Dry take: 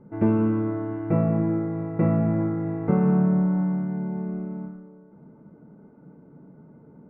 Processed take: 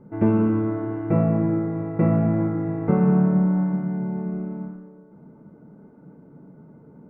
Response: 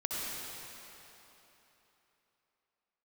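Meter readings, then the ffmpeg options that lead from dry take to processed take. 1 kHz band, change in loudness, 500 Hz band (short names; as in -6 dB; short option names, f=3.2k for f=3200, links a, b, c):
+2.0 dB, +2.0 dB, +2.0 dB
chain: -af "flanger=delay=7.3:depth=8.6:regen=-89:speed=0.8:shape=triangular,volume=6.5dB"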